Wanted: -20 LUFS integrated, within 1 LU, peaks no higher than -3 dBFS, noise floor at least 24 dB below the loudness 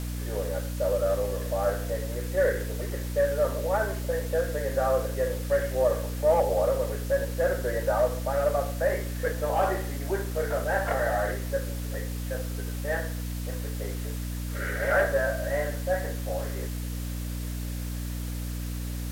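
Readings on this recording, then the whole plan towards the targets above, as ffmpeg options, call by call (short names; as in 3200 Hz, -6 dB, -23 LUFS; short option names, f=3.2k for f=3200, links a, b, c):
hum 60 Hz; harmonics up to 300 Hz; hum level -30 dBFS; noise floor -33 dBFS; noise floor target -53 dBFS; loudness -28.5 LUFS; peak -12.0 dBFS; loudness target -20.0 LUFS
-> -af "bandreject=f=60:t=h:w=6,bandreject=f=120:t=h:w=6,bandreject=f=180:t=h:w=6,bandreject=f=240:t=h:w=6,bandreject=f=300:t=h:w=6"
-af "afftdn=nr=20:nf=-33"
-af "volume=8.5dB"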